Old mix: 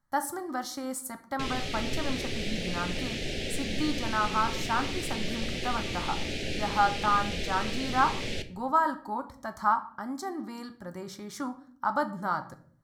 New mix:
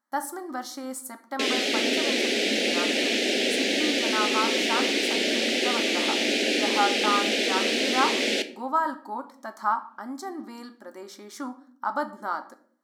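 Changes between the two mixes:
background +11.0 dB
master: add linear-phase brick-wall high-pass 210 Hz

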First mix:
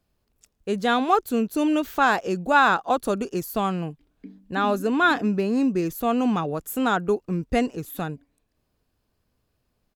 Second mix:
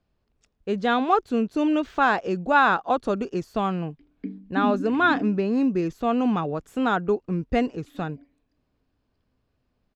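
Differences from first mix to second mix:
background +9.0 dB
master: add high-frequency loss of the air 130 metres

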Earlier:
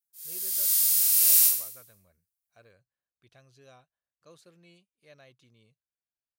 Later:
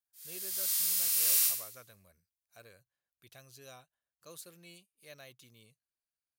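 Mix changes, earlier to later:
speech: remove head-to-tape spacing loss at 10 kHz 25 dB
master: add high-shelf EQ 5,400 Hz −9 dB

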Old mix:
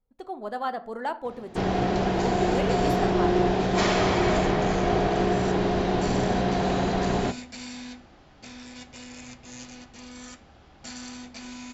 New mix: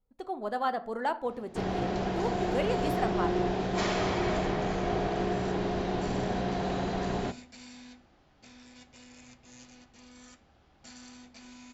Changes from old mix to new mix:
first sound −6.5 dB
second sound −10.0 dB

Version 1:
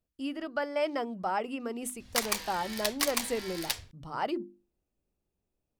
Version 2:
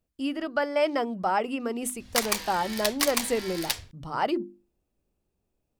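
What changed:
speech +5.5 dB
background +3.5 dB

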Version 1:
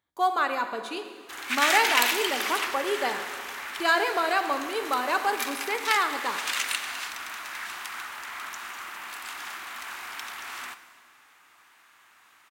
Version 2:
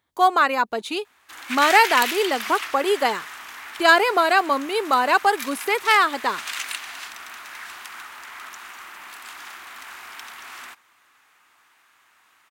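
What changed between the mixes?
speech +10.0 dB
reverb: off

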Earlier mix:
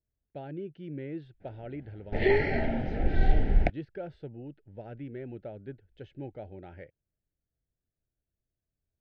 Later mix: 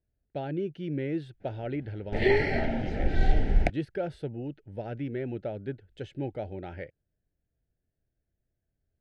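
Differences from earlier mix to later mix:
speech +6.5 dB
master: remove high-frequency loss of the air 160 metres

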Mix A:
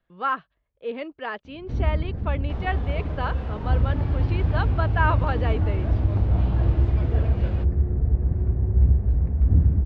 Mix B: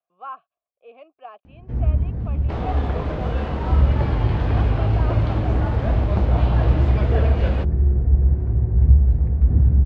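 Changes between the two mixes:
speech: add formant filter a
second sound +9.5 dB
reverb: on, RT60 1.1 s

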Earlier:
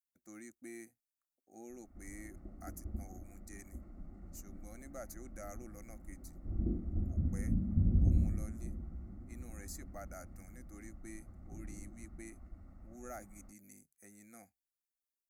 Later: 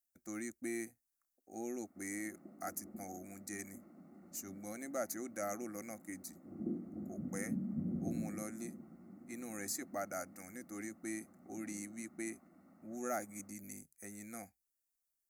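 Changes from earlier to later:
speech +8.5 dB
background: add high-pass filter 180 Hz 24 dB per octave

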